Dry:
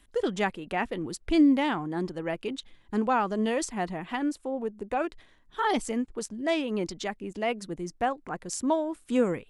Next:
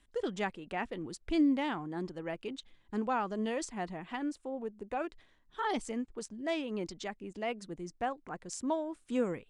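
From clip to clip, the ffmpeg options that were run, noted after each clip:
-af "lowpass=f=9400:w=0.5412,lowpass=f=9400:w=1.3066,volume=0.447"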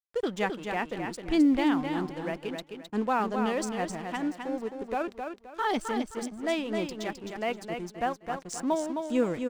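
-filter_complex "[0:a]aeval=exprs='sgn(val(0))*max(abs(val(0))-0.00224,0)':c=same,asplit=2[s0][s1];[s1]aecho=0:1:262|524|786|1048:0.501|0.145|0.0421|0.0122[s2];[s0][s2]amix=inputs=2:normalize=0,volume=1.88"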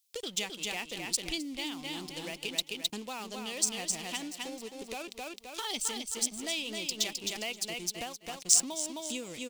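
-af "acompressor=threshold=0.0126:ratio=6,aexciter=amount=9.9:drive=4.4:freq=2400,volume=0.891"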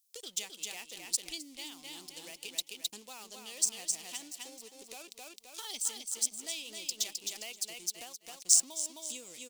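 -af "bass=f=250:g=-8,treble=f=4000:g=11,volume=0.316"

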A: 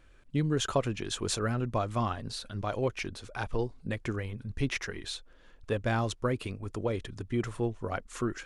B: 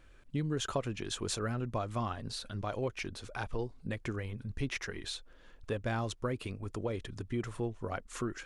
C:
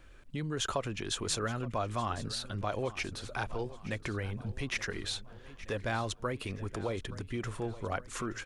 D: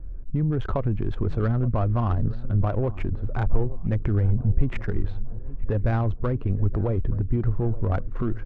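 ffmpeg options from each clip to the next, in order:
-af "acompressor=threshold=0.0112:ratio=1.5"
-filter_complex "[0:a]acrossover=split=570|1800[s0][s1][s2];[s0]alimiter=level_in=3.16:limit=0.0631:level=0:latency=1,volume=0.316[s3];[s3][s1][s2]amix=inputs=3:normalize=0,aecho=1:1:873|1746|2619|3492:0.15|0.0748|0.0374|0.0187,volume=1.5"
-af "adynamicsmooth=sensitivity=2.5:basefreq=770,aemphasis=mode=reproduction:type=riaa,volume=1.58"

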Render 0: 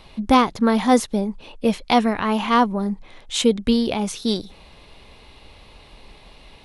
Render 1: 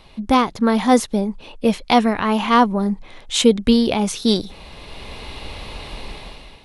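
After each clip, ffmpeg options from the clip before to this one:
-af "dynaudnorm=f=230:g=5:m=5.31,volume=0.891"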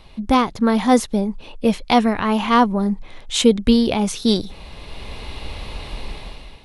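-af "lowshelf=f=120:g=5.5,volume=0.891"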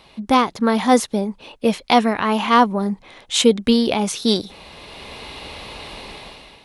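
-af "highpass=f=270:p=1,volume=1.26"

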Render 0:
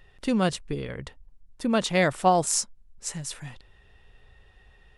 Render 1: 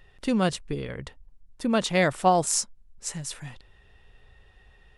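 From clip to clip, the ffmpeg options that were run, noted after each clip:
-af anull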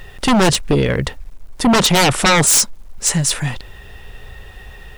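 -af "acrusher=bits=11:mix=0:aa=0.000001,aeval=exprs='0.376*sin(PI/2*5.62*val(0)/0.376)':c=same"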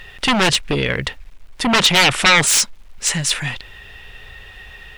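-af "equalizer=f=2600:w=0.6:g=11,volume=0.501"

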